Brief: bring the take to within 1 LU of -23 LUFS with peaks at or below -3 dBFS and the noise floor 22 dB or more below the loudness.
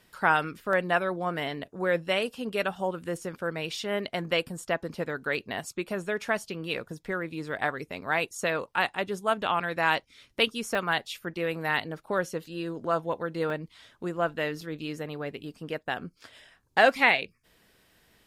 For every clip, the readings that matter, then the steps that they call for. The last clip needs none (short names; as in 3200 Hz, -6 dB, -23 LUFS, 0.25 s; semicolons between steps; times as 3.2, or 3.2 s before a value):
dropouts 4; longest dropout 2.0 ms; loudness -29.5 LUFS; peak -7.5 dBFS; loudness target -23.0 LUFS
-> interpolate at 0.73/10.75/13.5/14.61, 2 ms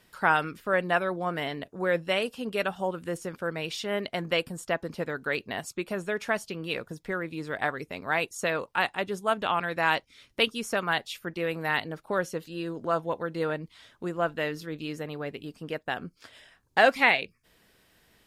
dropouts 0; loudness -29.5 LUFS; peak -7.5 dBFS; loudness target -23.0 LUFS
-> gain +6.5 dB; limiter -3 dBFS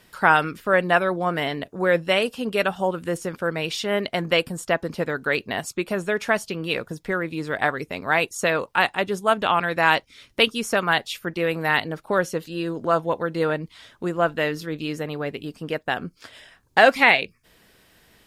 loudness -23.0 LUFS; peak -3.0 dBFS; noise floor -60 dBFS